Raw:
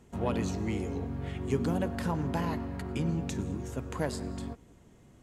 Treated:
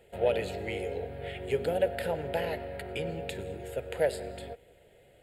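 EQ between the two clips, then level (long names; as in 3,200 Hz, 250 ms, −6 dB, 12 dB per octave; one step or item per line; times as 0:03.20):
low shelf with overshoot 370 Hz −12 dB, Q 3
phaser with its sweep stopped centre 2,600 Hz, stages 4
+6.0 dB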